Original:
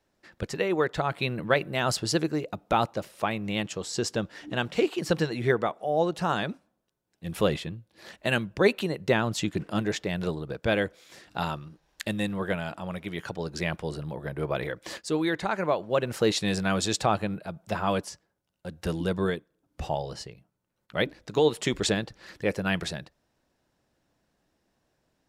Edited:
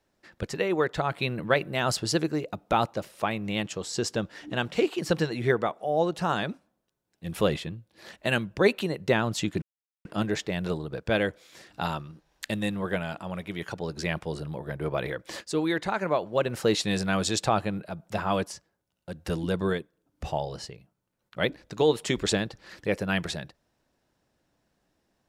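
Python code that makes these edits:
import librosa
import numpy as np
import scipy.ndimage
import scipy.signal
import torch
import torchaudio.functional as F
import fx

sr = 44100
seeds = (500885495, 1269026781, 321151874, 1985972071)

y = fx.edit(x, sr, fx.insert_silence(at_s=9.62, length_s=0.43), tone=tone)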